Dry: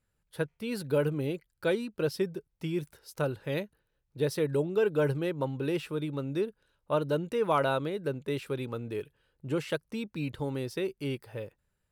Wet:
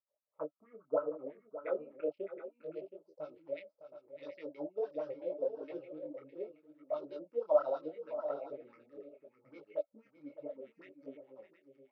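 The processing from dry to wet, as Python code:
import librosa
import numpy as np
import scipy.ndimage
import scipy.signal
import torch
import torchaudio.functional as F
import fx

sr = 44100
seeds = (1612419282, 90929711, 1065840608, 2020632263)

p1 = fx.wiener(x, sr, points=25)
p2 = fx.filter_sweep_lowpass(p1, sr, from_hz=1200.0, to_hz=5300.0, start_s=1.01, end_s=2.98, q=6.0)
p3 = fx.env_phaser(p2, sr, low_hz=250.0, high_hz=2200.0, full_db=-24.5)
p4 = fx.small_body(p3, sr, hz=(300.0, 580.0, 1300.0, 2200.0), ring_ms=90, db=13)
p5 = fx.dispersion(p4, sr, late='highs', ms=43.0, hz=450.0, at=(9.63, 10.87))
p6 = fx.filter_lfo_bandpass(p5, sr, shape='sine', hz=6.2, low_hz=490.0, high_hz=2100.0, q=6.2)
p7 = fx.graphic_eq_15(p6, sr, hz=(100, 630, 1600), db=(-10, 4, -10))
p8 = p7 + fx.echo_multitap(p7, sr, ms=(609, 721), db=(-12.0, -11.5), dry=0)
p9 = fx.detune_double(p8, sr, cents=25)
y = p9 * 10.0 ** (3.5 / 20.0)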